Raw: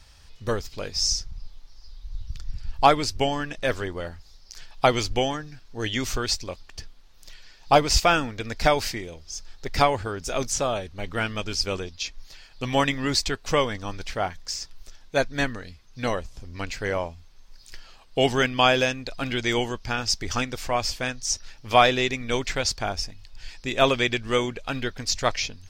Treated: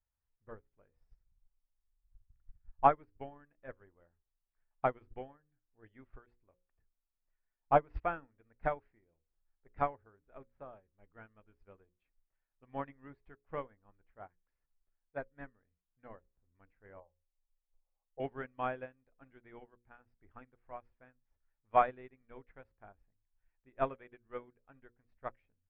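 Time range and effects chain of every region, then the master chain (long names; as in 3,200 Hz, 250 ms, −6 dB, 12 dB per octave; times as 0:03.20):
0:17.00–0:18.20: linear-phase brick-wall low-pass 1,300 Hz + phaser with its sweep stopped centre 620 Hz, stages 4 + comb filter 3.7 ms, depth 43%
whole clip: inverse Chebyshev low-pass filter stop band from 9,200 Hz, stop band 80 dB; mains-hum notches 60/120/180/240/300/360/420/480/540 Hz; expander for the loud parts 2.5 to 1, over −33 dBFS; level −6.5 dB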